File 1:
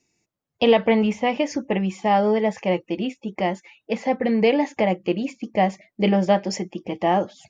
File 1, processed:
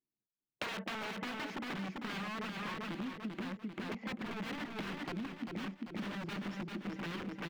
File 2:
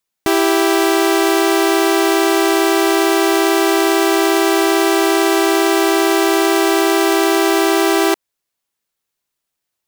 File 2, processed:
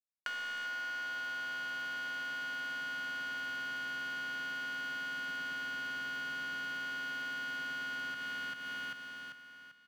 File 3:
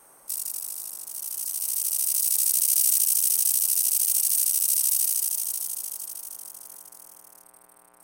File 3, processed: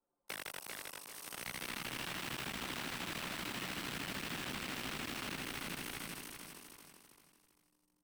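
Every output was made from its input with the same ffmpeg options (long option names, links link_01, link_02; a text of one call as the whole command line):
ffmpeg -i in.wav -filter_complex "[0:a]aeval=exprs='(mod(8.41*val(0)+1,2)-1)/8.41':channel_layout=same,anlmdn=0.398,asubboost=boost=7.5:cutoff=210,alimiter=limit=-14.5dB:level=0:latency=1:release=261,acrossover=split=180 3700:gain=0.0794 1 0.0891[link_01][link_02][link_03];[link_01][link_02][link_03]amix=inputs=3:normalize=0,aecho=1:1:393|786|1179|1572|1965:0.596|0.22|0.0815|0.0302|0.0112,asoftclip=type=tanh:threshold=-18dB,acompressor=threshold=-39dB:ratio=16,volume=1.5dB" out.wav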